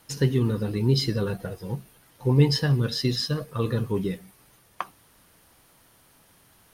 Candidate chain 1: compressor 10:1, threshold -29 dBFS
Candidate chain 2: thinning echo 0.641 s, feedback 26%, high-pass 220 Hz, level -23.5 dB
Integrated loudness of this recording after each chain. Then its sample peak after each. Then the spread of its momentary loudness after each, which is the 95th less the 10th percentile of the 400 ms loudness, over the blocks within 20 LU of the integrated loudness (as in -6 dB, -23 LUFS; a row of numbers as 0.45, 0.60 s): -35.0, -25.5 LUFS; -14.5, -8.0 dBFS; 9, 16 LU